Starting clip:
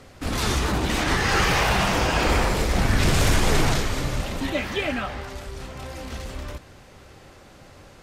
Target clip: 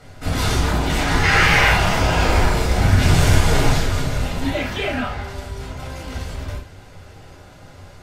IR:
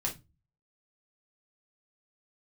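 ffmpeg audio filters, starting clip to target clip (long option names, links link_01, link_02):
-filter_complex "[0:a]asettb=1/sr,asplit=3[link_01][link_02][link_03];[link_01]atrim=end=1.234[link_04];[link_02]atrim=start=1.23:end=1.73,asetpts=PTS-STARTPTS,afade=type=in:duration=0.004:curve=qsin,afade=type=out:start_time=0.496:duration=0.004:curve=qsin,equalizer=frequency=2100:width=1.5:gain=10[link_05];[link_03]atrim=start=1.726[link_06];[link_04][link_05]acrossfade=duration=0.004:curve1=hsin:curve2=qsin[link_07];[link_07][link_06]acrossfade=duration=0.004:curve1=qsin:curve2=hsin,asoftclip=type=tanh:threshold=-9dB[link_08];[1:a]atrim=start_sample=2205,atrim=end_sample=3087,asetrate=35280,aresample=44100[link_09];[link_08][link_09]afir=irnorm=-1:irlink=0,volume=-2dB"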